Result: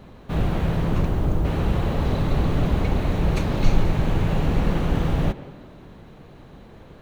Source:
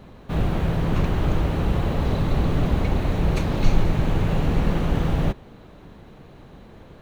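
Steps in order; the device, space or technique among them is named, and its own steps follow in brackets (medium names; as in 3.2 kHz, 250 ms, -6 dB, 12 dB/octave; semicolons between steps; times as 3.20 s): filtered reverb send (on a send: high-pass 150 Hz + low-pass 3.5 kHz + reverberation RT60 1.4 s, pre-delay 117 ms, DRR 15 dB); 0.79–1.44 s: on the sum: peaking EQ 2.7 kHz 0 dB -> -11.5 dB 2.7 oct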